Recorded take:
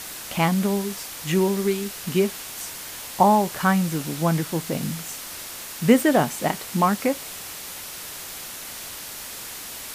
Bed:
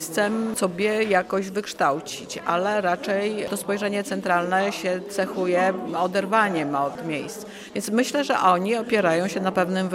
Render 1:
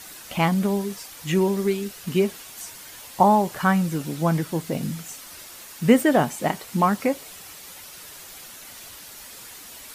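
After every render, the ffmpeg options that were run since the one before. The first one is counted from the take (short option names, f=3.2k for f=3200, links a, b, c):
-af "afftdn=nr=8:nf=-37"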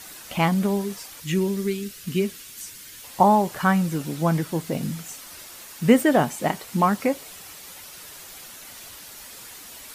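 -filter_complex "[0:a]asettb=1/sr,asplit=3[a][b][c];[a]atrim=end=1.204[d];[b]atrim=start=1.2:end=3.04,asetpts=PTS-STARTPTS,afade=t=in:d=0.004:c=qsin,afade=t=out:st=1.836:d=0.004:c=qsin,equalizer=f=780:w=1.1:g=-13[e];[c]atrim=start=3.036[f];[d][e]acrossfade=d=0.004:c1=hsin:c2=qsin[g];[g][f]acrossfade=d=0.004:c1=qsin:c2=hsin"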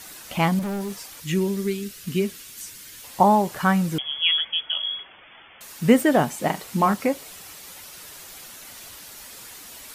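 -filter_complex "[0:a]asettb=1/sr,asplit=3[a][b][c];[a]atrim=end=0.594[d];[b]atrim=start=0.59:end=1.08,asetpts=PTS-STARTPTS,afade=t=in:d=0.004:c=qsin,afade=t=out:st=0.486:d=0.004:c=qsin,asoftclip=type=hard:threshold=-25.5dB[e];[c]atrim=start=1.076[f];[d][e]acrossfade=d=0.004:c1=hsin:c2=qsin[g];[g][f]acrossfade=d=0.004:c1=qsin:c2=hsin,asettb=1/sr,asplit=3[h][i][j];[h]atrim=end=3.984[k];[i]atrim=start=3.98:end=5.61,asetpts=PTS-STARTPTS,afade=t=in:d=0.004:c=qsin,afade=t=out:st=1.626:d=0.004:c=qsin,lowpass=f=3k:t=q:w=0.5098,lowpass=f=3k:t=q:w=0.6013,lowpass=f=3k:t=q:w=0.9,lowpass=f=3k:t=q:w=2.563,afreqshift=-3500[l];[j]atrim=start=5.606[m];[k][l]acrossfade=d=0.004:c1=hsin:c2=qsin[n];[n][m]acrossfade=d=0.004:c1=qsin:c2=hsin,asettb=1/sr,asplit=3[o][p][q];[o]atrim=end=6.414[r];[p]atrim=start=6.41:end=6.94,asetpts=PTS-STARTPTS,afade=t=in:d=0.004:c=qsin,afade=t=out:st=0.526:d=0.004:c=qsin,asplit=2[s][t];[t]adelay=42,volume=-10dB[u];[s][u]amix=inputs=2:normalize=0,atrim=end_sample=23373[v];[q]atrim=start=6.936[w];[r][v]acrossfade=d=0.004:c1=hsin:c2=qsin[x];[x][w]acrossfade=d=0.004:c1=qsin:c2=hsin"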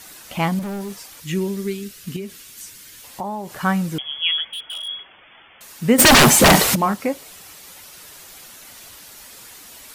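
-filter_complex "[0:a]asettb=1/sr,asplit=3[a][b][c];[a]atrim=end=2.164[d];[b]atrim=start=2.16:end=3.61,asetpts=PTS-STARTPTS,afade=t=in:d=0.004:c=qsin,afade=t=out:st=1.446:d=0.004:c=qsin,acompressor=threshold=-30dB:ratio=2.5:attack=3.2:release=140:knee=1:detection=peak[e];[c]atrim=start=3.606[f];[d][e]acrossfade=d=0.004:c1=hsin:c2=qsin[g];[g][f]acrossfade=d=0.004:c1=qsin:c2=hsin,asplit=3[h][i][j];[h]afade=t=out:st=4.46:d=0.02[k];[i]volume=27.5dB,asoftclip=hard,volume=-27.5dB,afade=t=in:st=4.46:d=0.02,afade=t=out:st=4.87:d=0.02[l];[j]afade=t=in:st=4.87:d=0.02[m];[k][l][m]amix=inputs=3:normalize=0,asplit=3[n][o][p];[n]afade=t=out:st=5.98:d=0.02[q];[o]aeval=exprs='0.473*sin(PI/2*8.91*val(0)/0.473)':c=same,afade=t=in:st=5.98:d=0.02,afade=t=out:st=6.74:d=0.02[r];[p]afade=t=in:st=6.74:d=0.02[s];[q][r][s]amix=inputs=3:normalize=0"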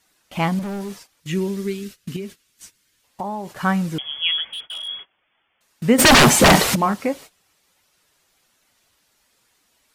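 -af "agate=range=-20dB:threshold=-36dB:ratio=16:detection=peak,highshelf=f=11k:g=-10.5"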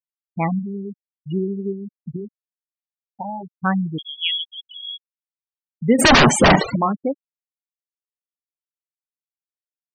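-af "highshelf=f=3.2k:g=-2,afftfilt=real='re*gte(hypot(re,im),0.178)':imag='im*gte(hypot(re,im),0.178)':win_size=1024:overlap=0.75"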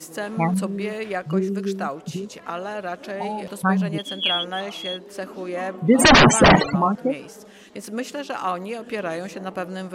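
-filter_complex "[1:a]volume=-7.5dB[a];[0:a][a]amix=inputs=2:normalize=0"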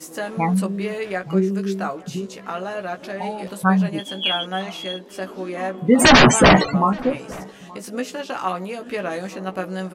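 -filter_complex "[0:a]asplit=2[a][b];[b]adelay=16,volume=-5.5dB[c];[a][c]amix=inputs=2:normalize=0,asplit=2[d][e];[e]adelay=874.6,volume=-22dB,highshelf=f=4k:g=-19.7[f];[d][f]amix=inputs=2:normalize=0"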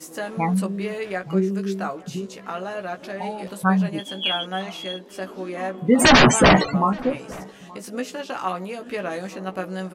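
-af "volume=-2dB"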